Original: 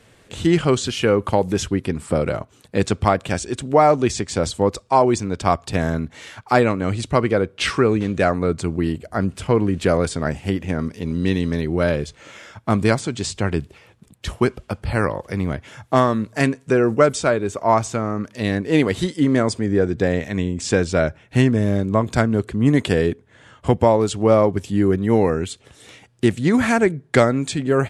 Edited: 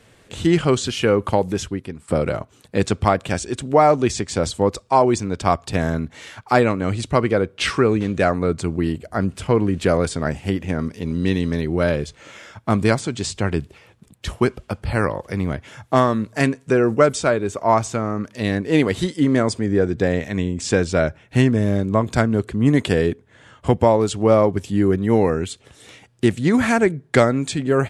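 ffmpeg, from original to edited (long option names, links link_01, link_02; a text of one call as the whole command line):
ffmpeg -i in.wav -filter_complex "[0:a]asplit=2[link_01][link_02];[link_01]atrim=end=2.08,asetpts=PTS-STARTPTS,afade=type=out:start_time=1.34:duration=0.74:silence=0.177828[link_03];[link_02]atrim=start=2.08,asetpts=PTS-STARTPTS,afade=type=in:duration=0.004:curve=hsin:silence=0.177828[link_04];[link_03][link_04]concat=n=2:v=0:a=1" out.wav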